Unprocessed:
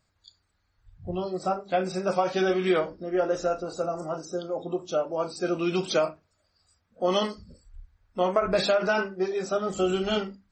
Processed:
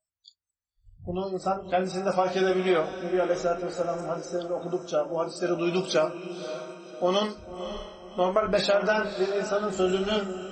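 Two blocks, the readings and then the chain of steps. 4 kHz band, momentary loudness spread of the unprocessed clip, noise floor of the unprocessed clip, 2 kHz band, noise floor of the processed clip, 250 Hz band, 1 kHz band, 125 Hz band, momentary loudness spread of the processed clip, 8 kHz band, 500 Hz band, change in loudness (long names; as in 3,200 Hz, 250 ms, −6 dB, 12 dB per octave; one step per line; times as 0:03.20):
+0.5 dB, 9 LU, −73 dBFS, +0.5 dB, below −85 dBFS, +0.5 dB, +0.5 dB, +0.5 dB, 12 LU, +0.5 dB, +0.5 dB, 0.0 dB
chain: feedback delay with all-pass diffusion 561 ms, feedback 42%, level −10.5 dB
noise reduction from a noise print of the clip's start 27 dB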